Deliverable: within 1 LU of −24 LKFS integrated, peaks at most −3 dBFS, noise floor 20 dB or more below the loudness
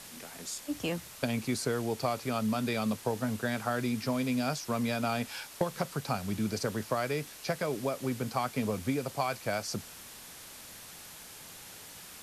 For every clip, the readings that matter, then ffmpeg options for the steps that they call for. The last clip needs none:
background noise floor −49 dBFS; target noise floor −53 dBFS; integrated loudness −33.0 LKFS; sample peak −13.5 dBFS; target loudness −24.0 LKFS
→ -af "afftdn=noise_reduction=6:noise_floor=-49"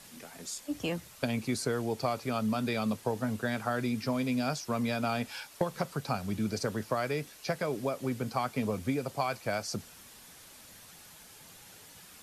background noise floor −53 dBFS; integrated loudness −33.0 LKFS; sample peak −14.0 dBFS; target loudness −24.0 LKFS
→ -af "volume=9dB"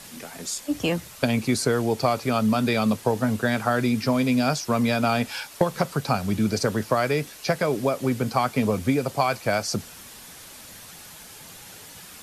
integrated loudness −24.0 LKFS; sample peak −5.0 dBFS; background noise floor −44 dBFS

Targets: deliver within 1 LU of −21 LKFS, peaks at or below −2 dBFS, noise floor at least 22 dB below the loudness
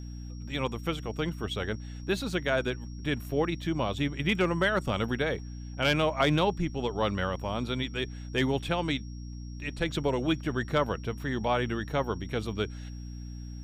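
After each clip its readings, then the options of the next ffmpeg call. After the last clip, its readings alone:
mains hum 60 Hz; hum harmonics up to 300 Hz; level of the hum −37 dBFS; interfering tone 5,600 Hz; level of the tone −55 dBFS; integrated loudness −30.0 LKFS; sample peak −13.5 dBFS; target loudness −21.0 LKFS
→ -af "bandreject=frequency=60:width_type=h:width=4,bandreject=frequency=120:width_type=h:width=4,bandreject=frequency=180:width_type=h:width=4,bandreject=frequency=240:width_type=h:width=4,bandreject=frequency=300:width_type=h:width=4"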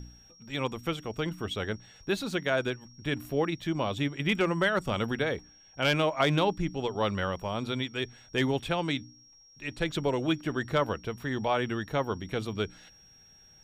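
mains hum none found; interfering tone 5,600 Hz; level of the tone −55 dBFS
→ -af "bandreject=frequency=5600:width=30"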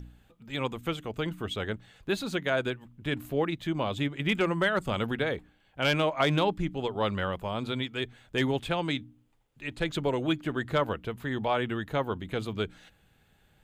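interfering tone none found; integrated loudness −30.5 LKFS; sample peak −13.5 dBFS; target loudness −21.0 LKFS
→ -af "volume=9.5dB"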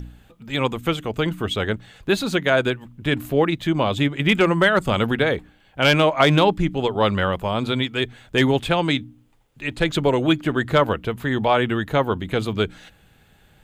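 integrated loudness −21.0 LKFS; sample peak −4.0 dBFS; background noise floor −56 dBFS

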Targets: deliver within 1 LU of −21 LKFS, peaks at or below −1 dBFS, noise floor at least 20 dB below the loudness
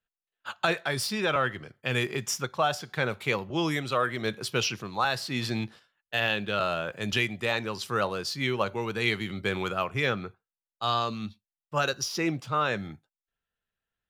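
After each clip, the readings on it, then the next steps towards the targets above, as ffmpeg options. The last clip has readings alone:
integrated loudness −29.0 LKFS; sample peak −10.5 dBFS; target loudness −21.0 LKFS
→ -af "volume=8dB"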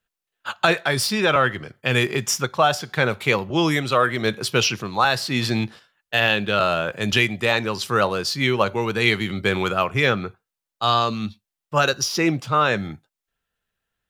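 integrated loudness −21.0 LKFS; sample peak −2.5 dBFS; background noise floor −86 dBFS

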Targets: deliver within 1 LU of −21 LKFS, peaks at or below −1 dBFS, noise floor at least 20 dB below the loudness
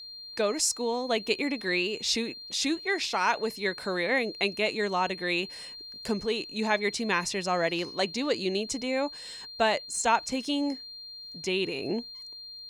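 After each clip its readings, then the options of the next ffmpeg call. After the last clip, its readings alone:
interfering tone 4,200 Hz; level of the tone −41 dBFS; integrated loudness −28.5 LKFS; sample peak −11.0 dBFS; target loudness −21.0 LKFS
→ -af "bandreject=frequency=4200:width=30"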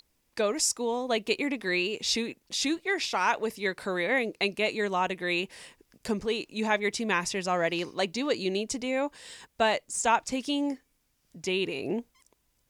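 interfering tone none found; integrated loudness −29.0 LKFS; sample peak −11.0 dBFS; target loudness −21.0 LKFS
→ -af "volume=8dB"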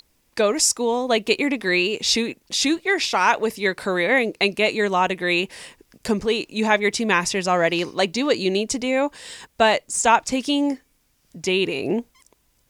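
integrated loudness −21.0 LKFS; sample peak −3.0 dBFS; background noise floor −65 dBFS

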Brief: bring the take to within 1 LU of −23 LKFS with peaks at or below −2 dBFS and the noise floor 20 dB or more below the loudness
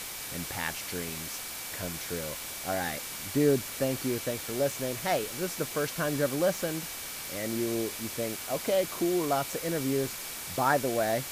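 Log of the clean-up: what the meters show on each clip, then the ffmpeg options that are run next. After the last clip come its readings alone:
interfering tone 2,300 Hz; level of the tone −50 dBFS; background noise floor −39 dBFS; target noise floor −51 dBFS; integrated loudness −30.5 LKFS; sample peak −11.5 dBFS; target loudness −23.0 LKFS
→ -af "bandreject=frequency=2300:width=30"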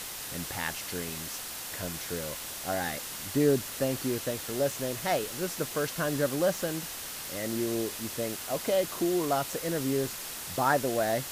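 interfering tone none found; background noise floor −39 dBFS; target noise floor −51 dBFS
→ -af "afftdn=noise_reduction=12:noise_floor=-39"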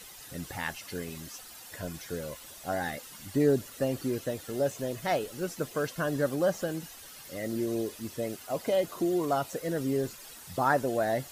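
background noise floor −48 dBFS; target noise floor −52 dBFS
→ -af "afftdn=noise_reduction=6:noise_floor=-48"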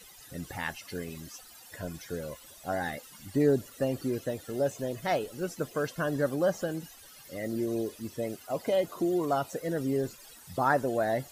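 background noise floor −52 dBFS; integrated loudness −31.5 LKFS; sample peak −12.0 dBFS; target loudness −23.0 LKFS
→ -af "volume=8.5dB"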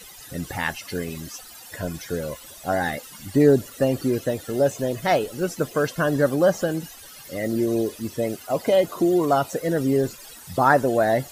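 integrated loudness −23.0 LKFS; sample peak −3.5 dBFS; background noise floor −44 dBFS

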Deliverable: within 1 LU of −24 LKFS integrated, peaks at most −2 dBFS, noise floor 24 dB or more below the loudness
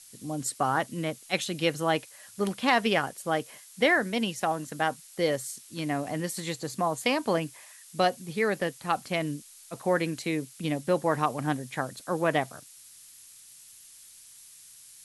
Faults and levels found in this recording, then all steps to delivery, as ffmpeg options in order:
background noise floor −52 dBFS; target noise floor −53 dBFS; integrated loudness −29.0 LKFS; sample peak −8.5 dBFS; target loudness −24.0 LKFS
→ -af "afftdn=noise_reduction=6:noise_floor=-52"
-af "volume=5dB"

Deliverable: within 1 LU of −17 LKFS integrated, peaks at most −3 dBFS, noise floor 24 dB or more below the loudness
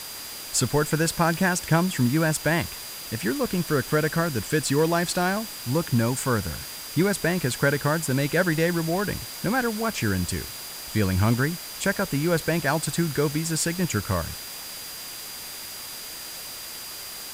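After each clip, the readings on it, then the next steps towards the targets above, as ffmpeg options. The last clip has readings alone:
interfering tone 4,800 Hz; level of the tone −41 dBFS; background noise floor −37 dBFS; target noise floor −50 dBFS; integrated loudness −25.5 LKFS; sample peak −7.5 dBFS; target loudness −17.0 LKFS
→ -af "bandreject=frequency=4800:width=30"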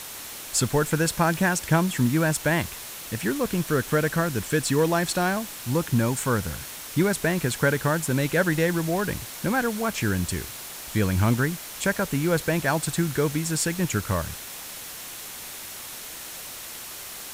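interfering tone none found; background noise floor −38 dBFS; target noise floor −50 dBFS
→ -af "afftdn=noise_reduction=12:noise_floor=-38"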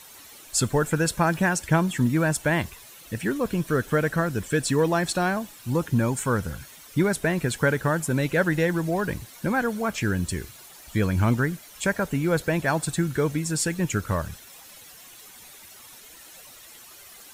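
background noise floor −47 dBFS; target noise floor −49 dBFS
→ -af "afftdn=noise_reduction=6:noise_floor=-47"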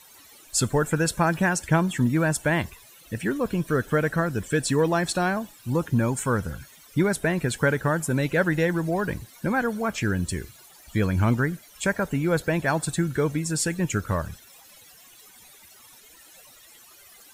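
background noise floor −51 dBFS; integrated loudness −25.0 LKFS; sample peak −7.5 dBFS; target loudness −17.0 LKFS
→ -af "volume=8dB,alimiter=limit=-3dB:level=0:latency=1"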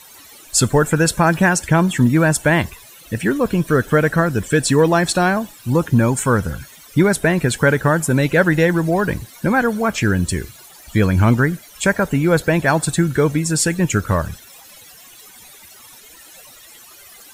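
integrated loudness −17.0 LKFS; sample peak −3.0 dBFS; background noise floor −43 dBFS

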